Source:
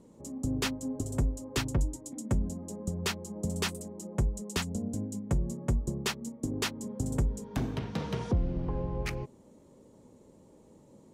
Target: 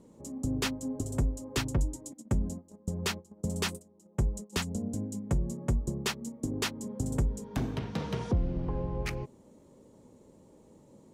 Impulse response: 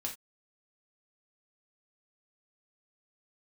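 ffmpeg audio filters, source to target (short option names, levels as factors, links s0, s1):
-filter_complex "[0:a]asplit=3[s0][s1][s2];[s0]afade=t=out:st=2.12:d=0.02[s3];[s1]agate=range=0.126:threshold=0.0141:ratio=16:detection=peak,afade=t=in:st=2.12:d=0.02,afade=t=out:st=4.52:d=0.02[s4];[s2]afade=t=in:st=4.52:d=0.02[s5];[s3][s4][s5]amix=inputs=3:normalize=0"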